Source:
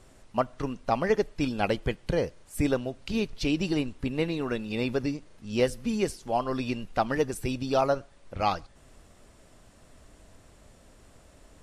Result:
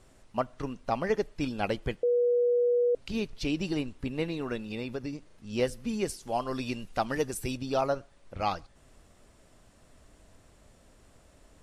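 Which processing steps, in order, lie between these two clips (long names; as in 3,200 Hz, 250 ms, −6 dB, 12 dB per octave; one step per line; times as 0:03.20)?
0:02.03–0:02.95: beep over 484 Hz −18 dBFS
0:04.64–0:05.13: downward compressor 3 to 1, threshold −29 dBFS, peak gain reduction 5.5 dB
0:06.09–0:07.57: high-shelf EQ 4,400 Hz +7.5 dB
level −3.5 dB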